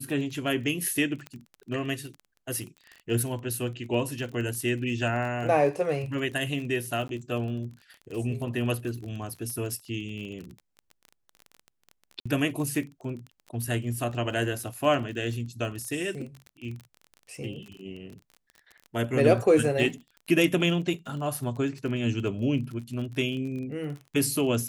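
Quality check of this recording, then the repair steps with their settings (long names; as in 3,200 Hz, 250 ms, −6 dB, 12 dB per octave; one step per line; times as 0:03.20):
surface crackle 29 per second −35 dBFS
0:01.27: click −23 dBFS
0:07.08–0:07.09: drop-out 12 ms
0:12.20–0:12.26: drop-out 55 ms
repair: click removal
repair the gap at 0:07.08, 12 ms
repair the gap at 0:12.20, 55 ms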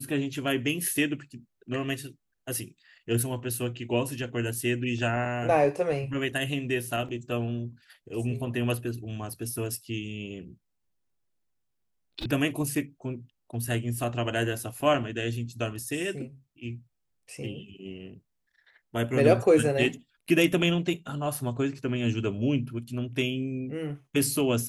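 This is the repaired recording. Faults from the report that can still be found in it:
none of them is left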